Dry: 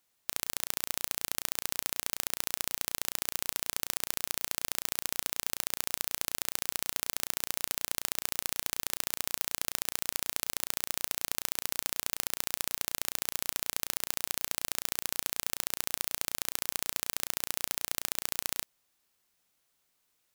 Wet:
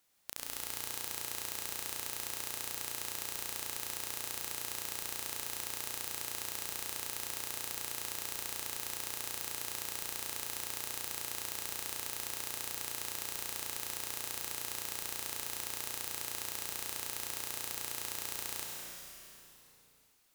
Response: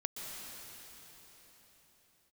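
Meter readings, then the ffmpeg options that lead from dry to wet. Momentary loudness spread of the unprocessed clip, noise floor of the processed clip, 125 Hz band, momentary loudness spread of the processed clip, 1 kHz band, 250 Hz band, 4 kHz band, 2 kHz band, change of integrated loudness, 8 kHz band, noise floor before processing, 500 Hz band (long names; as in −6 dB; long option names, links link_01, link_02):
1 LU, −61 dBFS, −4.0 dB, 0 LU, −3.5 dB, −4.5 dB, −5.0 dB, −4.5 dB, −5.0 dB, −4.5 dB, −76 dBFS, −3.5 dB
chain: -filter_complex "[0:a]aeval=exprs='0.841*(cos(1*acos(clip(val(0)/0.841,-1,1)))-cos(1*PI/2))+0.376*(cos(7*acos(clip(val(0)/0.841,-1,1)))-cos(7*PI/2))':channel_layout=same,asoftclip=type=tanh:threshold=-5.5dB[link_01];[1:a]atrim=start_sample=2205,asetrate=61740,aresample=44100[link_02];[link_01][link_02]afir=irnorm=-1:irlink=0"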